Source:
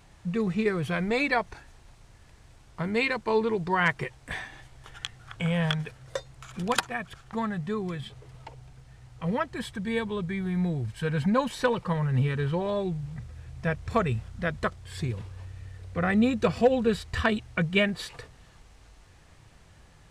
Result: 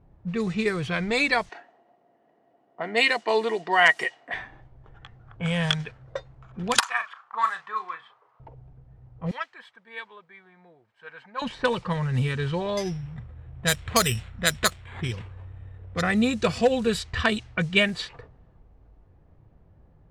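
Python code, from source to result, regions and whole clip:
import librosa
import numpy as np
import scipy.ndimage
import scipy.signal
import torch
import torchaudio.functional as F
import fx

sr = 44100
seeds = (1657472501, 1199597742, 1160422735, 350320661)

y = fx.chain(x, sr, fx.highpass(hz=250.0, slope=24),
    fx.small_body(hz=(700.0, 1900.0, 2900.0), ring_ms=45, db=14), at=(1.49, 4.34))
y = fx.chain(y, sr, fx.highpass_res(hz=1100.0, q=3.7),
    fx.doubler(ms=36.0, db=-9.0), at=(6.79, 8.4))
y = fx.chain(y, sr, fx.bessel_highpass(hz=1500.0, order=2),
    fx.resample_bad(factor=2, down='none', up='zero_stuff'), at=(9.31, 11.42))
y = fx.chain(y, sr, fx.peak_eq(hz=2400.0, db=7.0, octaves=1.6),
    fx.resample_bad(factor=8, down='none', up='hold'), at=(12.77, 16.02))
y = fx.env_lowpass(y, sr, base_hz=520.0, full_db=-21.0)
y = fx.peak_eq(y, sr, hz=7800.0, db=10.5, octaves=2.8)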